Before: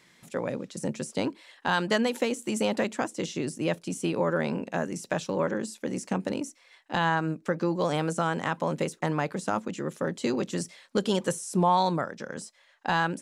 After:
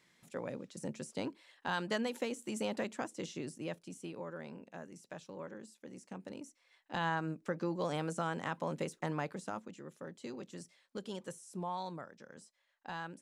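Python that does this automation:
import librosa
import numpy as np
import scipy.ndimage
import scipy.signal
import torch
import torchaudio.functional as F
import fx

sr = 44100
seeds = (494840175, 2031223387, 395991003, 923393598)

y = fx.gain(x, sr, db=fx.line((3.32, -10.0), (4.32, -18.5), (6.07, -18.5), (7.05, -9.0), (9.23, -9.0), (9.83, -17.0)))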